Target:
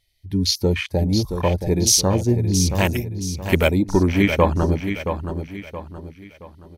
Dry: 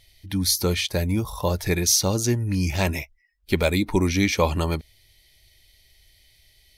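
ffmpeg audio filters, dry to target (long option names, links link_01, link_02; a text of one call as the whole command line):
ffmpeg -i in.wav -filter_complex "[0:a]afwtdn=0.0501,asettb=1/sr,asplit=3[link_01][link_02][link_03];[link_01]atrim=end=2.754[link_04];[link_02]atrim=start=2.75:end=3.68,asetpts=PTS-STARTPTS,afade=type=in:duration=0.004:curve=qsin,afade=type=out:start_time=0.926:duration=0.004:curve=qsin,aemphasis=mode=production:type=75fm[link_05];[link_03]atrim=start=3.676[link_06];[link_04][link_05]acrossfade=duration=0.004:curve1=hsin:curve2=qsin[link_07];[link_07][link_06]acrossfade=duration=0.004:curve1=qsin:curve2=hsin,aecho=1:1:673|1346|2019|2692:0.398|0.151|0.0575|0.0218,volume=4dB" out.wav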